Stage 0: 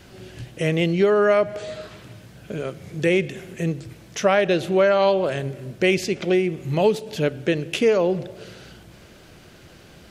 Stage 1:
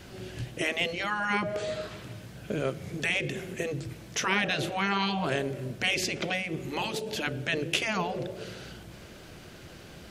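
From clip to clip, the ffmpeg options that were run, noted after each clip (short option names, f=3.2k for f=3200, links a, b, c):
-af "afftfilt=real='re*lt(hypot(re,im),0.355)':imag='im*lt(hypot(re,im),0.355)':win_size=1024:overlap=0.75"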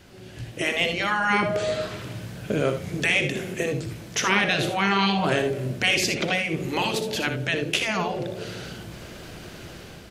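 -filter_complex "[0:a]asplit=2[a][b];[b]aecho=0:1:61|78:0.316|0.266[c];[a][c]amix=inputs=2:normalize=0,dynaudnorm=f=230:g=5:m=10dB,volume=-3.5dB"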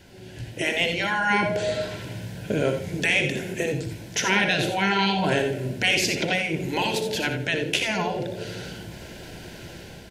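-af "asuperstop=centerf=1200:order=8:qfactor=4.6,aecho=1:1:89:0.266"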